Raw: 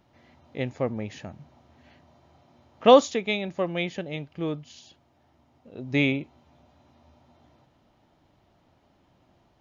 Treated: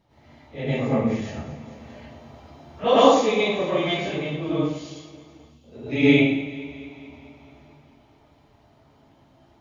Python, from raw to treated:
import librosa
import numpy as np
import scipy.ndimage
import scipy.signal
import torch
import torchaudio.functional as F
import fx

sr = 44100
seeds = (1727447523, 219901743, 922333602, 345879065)

y = fx.phase_scramble(x, sr, seeds[0], window_ms=100)
y = fx.rider(y, sr, range_db=3, speed_s=0.5)
y = fx.echo_alternate(y, sr, ms=109, hz=880.0, feedback_pct=78, wet_db=-13.5)
y = fx.spec_erase(y, sr, start_s=5.38, length_s=0.25, low_hz=260.0, high_hz=2500.0)
y = fx.rev_plate(y, sr, seeds[1], rt60_s=0.63, hf_ratio=0.85, predelay_ms=85, drr_db=-8.0)
y = fx.band_squash(y, sr, depth_pct=40, at=(1.2, 2.84))
y = y * librosa.db_to_amplitude(-5.5)